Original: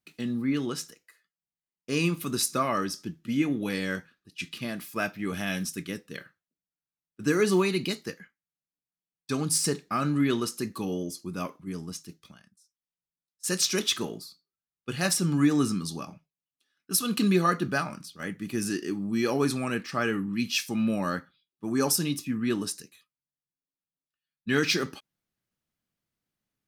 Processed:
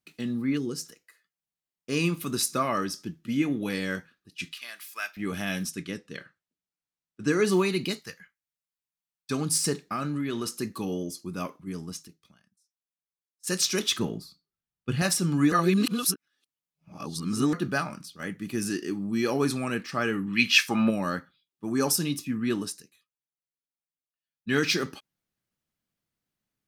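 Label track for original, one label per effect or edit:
0.570000	0.850000	time-frequency box 500–4100 Hz -11 dB
4.530000	5.170000	high-pass 1.4 kHz
5.710000	7.440000	low-pass 8.2 kHz
7.990000	9.310000	peaking EQ 310 Hz -14 dB 1.6 oct
9.810000	10.460000	compression, threshold -26 dBFS
12.080000	13.470000	gain -8.5 dB
13.990000	15.020000	tone controls bass +9 dB, treble -5 dB
15.520000	17.530000	reverse
20.260000	20.890000	peaking EQ 3.4 kHz -> 800 Hz +15 dB 2 oct
22.590000	24.530000	dip -8 dB, fades 0.45 s quadratic

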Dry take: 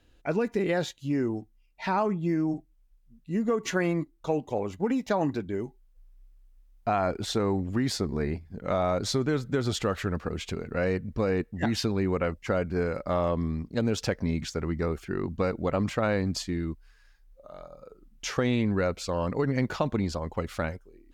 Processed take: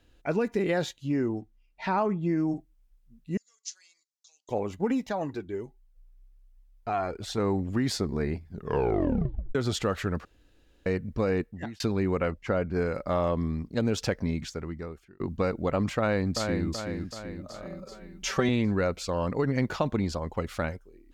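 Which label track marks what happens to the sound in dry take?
0.970000	2.360000	treble shelf 8.5 kHz -> 5.1 kHz -9 dB
3.370000	4.490000	Butterworth band-pass 5.8 kHz, Q 2.1
5.070000	7.380000	flange 1.3 Hz, delay 0.9 ms, depth 2 ms, regen +41%
8.490000	8.490000	tape stop 1.06 s
10.250000	10.860000	room tone
11.380000	11.800000	fade out
12.300000	12.730000	treble shelf 5.7 kHz -> 4 kHz -10 dB
14.180000	15.200000	fade out
15.980000	16.660000	echo throw 380 ms, feedback 55%, level -5 dB
17.650000	18.490000	comb 5.2 ms, depth 82%

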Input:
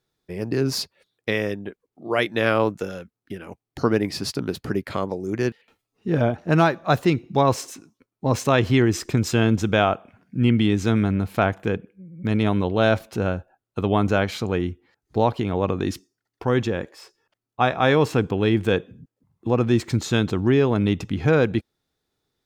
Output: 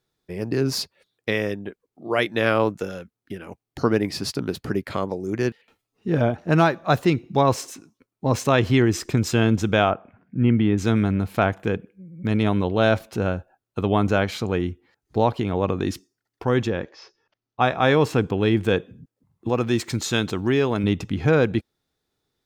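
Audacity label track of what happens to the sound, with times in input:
9.900000	10.780000	low-pass 2 kHz
16.690000	17.620000	steep low-pass 6.4 kHz 72 dB/octave
19.490000	20.840000	tilt EQ +1.5 dB/octave

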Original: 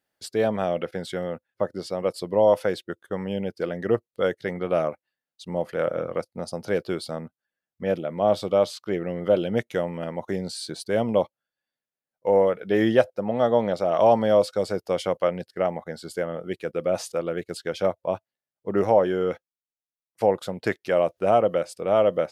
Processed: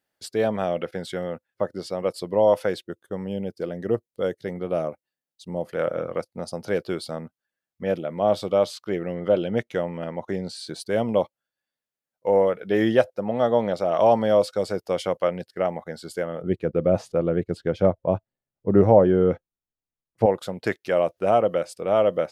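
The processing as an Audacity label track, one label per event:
2.870000	5.730000	peaking EQ 1.8 kHz -7.5 dB 2.3 oct
9.140000	10.670000	treble shelf 7.6 kHz -10 dB
16.420000	20.260000	tilt EQ -4 dB/octave

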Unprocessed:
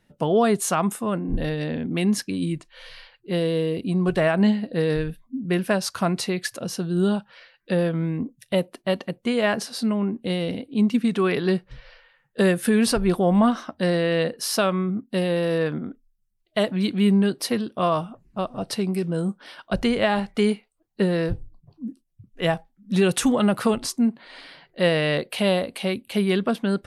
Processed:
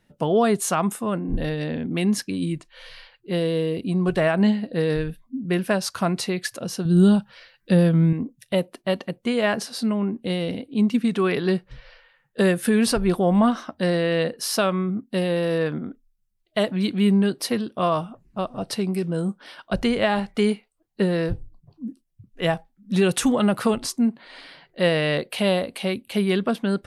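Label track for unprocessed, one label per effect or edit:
6.850000	8.130000	tone controls bass +10 dB, treble +6 dB

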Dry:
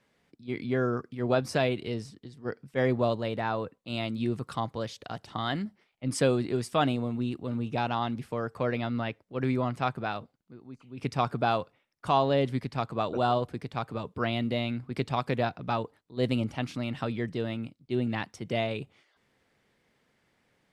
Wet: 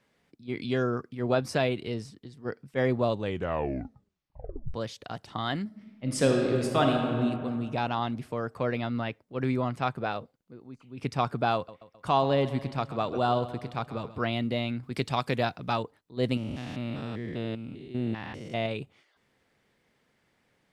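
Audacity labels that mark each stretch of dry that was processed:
0.620000	0.830000	time-frequency box 2.4–9.4 kHz +10 dB
3.070000	3.070000	tape stop 1.67 s
5.650000	7.160000	reverb throw, RT60 2.2 s, DRR 1 dB
9.990000	10.690000	peaking EQ 500 Hz +6.5 dB 0.54 oct
11.550000	14.220000	feedback delay 131 ms, feedback 54%, level -15 dB
14.830000	15.830000	treble shelf 3.1 kHz +8.5 dB
16.370000	18.660000	spectrogram pixelated in time every 200 ms

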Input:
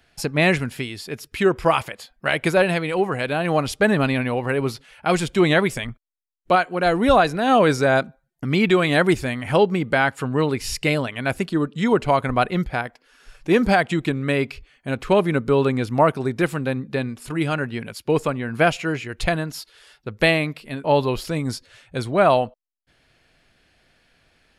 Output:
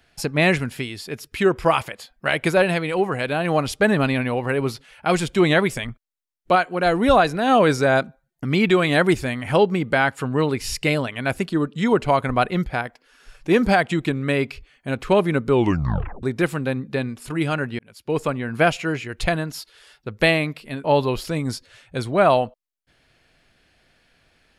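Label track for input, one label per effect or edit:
15.510000	15.510000	tape stop 0.72 s
17.790000	18.300000	fade in

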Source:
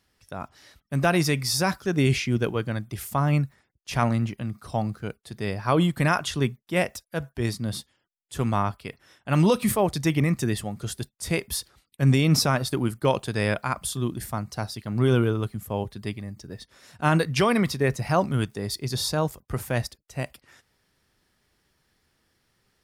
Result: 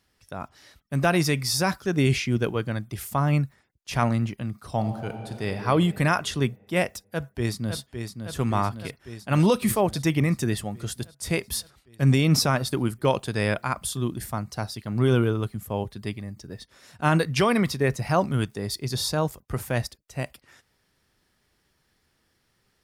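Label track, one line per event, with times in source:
4.730000	5.580000	reverb throw, RT60 2.9 s, DRR 6 dB
6.880000	7.780000	echo throw 560 ms, feedback 70%, level -7 dB

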